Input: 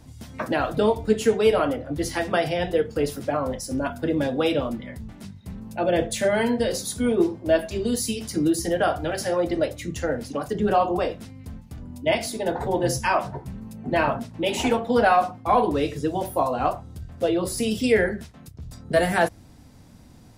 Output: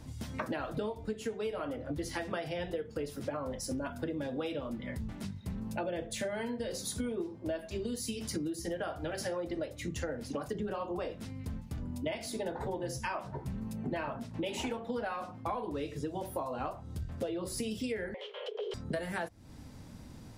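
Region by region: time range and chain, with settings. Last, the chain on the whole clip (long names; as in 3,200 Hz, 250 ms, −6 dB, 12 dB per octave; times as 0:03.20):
0:18.14–0:18.74: low-pass with resonance 2,800 Hz, resonance Q 13 + frequency shifter +340 Hz + multiband upward and downward compressor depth 70%
whole clip: high-shelf EQ 8,500 Hz −4 dB; notch filter 720 Hz, Q 15; downward compressor 12 to 1, threshold −33 dBFS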